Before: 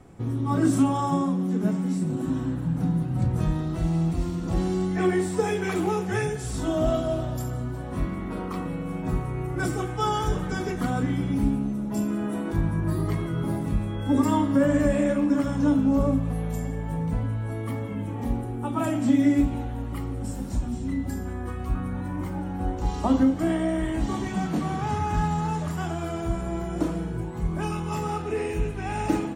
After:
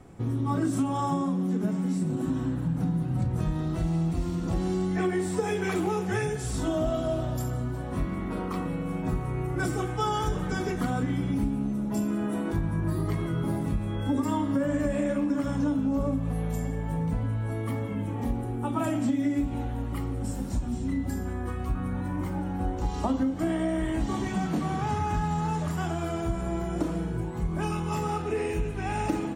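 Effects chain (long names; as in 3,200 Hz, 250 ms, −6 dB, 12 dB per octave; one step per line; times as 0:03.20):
downward compressor, threshold −23 dBFS, peak gain reduction 8 dB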